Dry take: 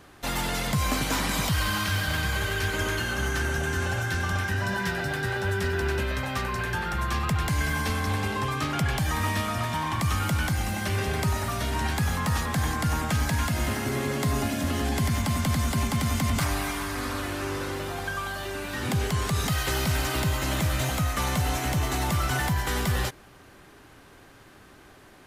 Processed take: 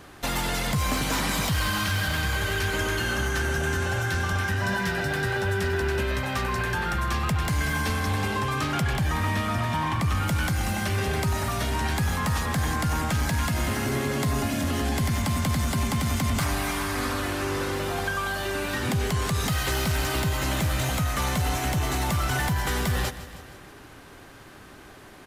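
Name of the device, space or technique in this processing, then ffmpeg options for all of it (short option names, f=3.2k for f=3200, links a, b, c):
soft clipper into limiter: -filter_complex "[0:a]asettb=1/sr,asplit=3[a][b][c];[a]atrim=end=8.934[d];[b]atrim=start=8.93:end=10.28,asetpts=PTS-STARTPTS,afade=t=in:d=0.004:c=qsin,afade=t=out:st=1.346:d=0.004:c=qsin,bass=f=250:g=2,treble=f=4k:g=-5[e];[c]atrim=start=10.276[f];[d][e]acrossfade=d=0.004:c1=hsin:c2=qsin[g];[g][f]acrossfade=d=0.004:c1=qsin:c2=hsin,aecho=1:1:158|316|474|632|790:0.141|0.0763|0.0412|0.0222|0.012,asoftclip=type=tanh:threshold=-18dB,alimiter=limit=-23dB:level=0:latency=1:release=339,volume=4.5dB"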